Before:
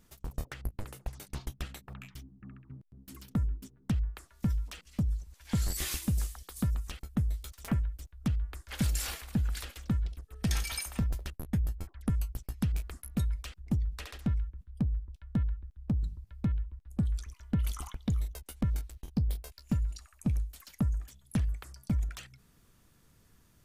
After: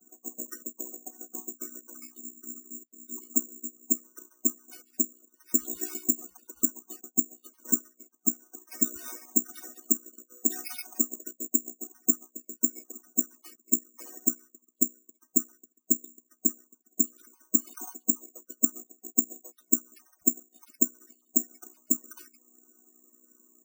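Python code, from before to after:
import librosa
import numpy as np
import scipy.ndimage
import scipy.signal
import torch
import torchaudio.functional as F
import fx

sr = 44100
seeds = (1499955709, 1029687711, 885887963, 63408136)

y = fx.chord_vocoder(x, sr, chord='major triad', root=59)
y = fx.spec_topn(y, sr, count=16)
y = (np.kron(y[::6], np.eye(6)[0]) * 6)[:len(y)]
y = y * 10.0 ** (-1.5 / 20.0)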